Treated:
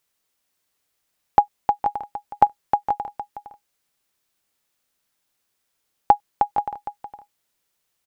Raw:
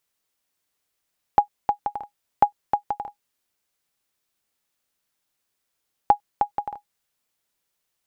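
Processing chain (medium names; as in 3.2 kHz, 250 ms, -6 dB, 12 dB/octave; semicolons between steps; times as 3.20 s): delay 461 ms -12.5 dB; trim +3 dB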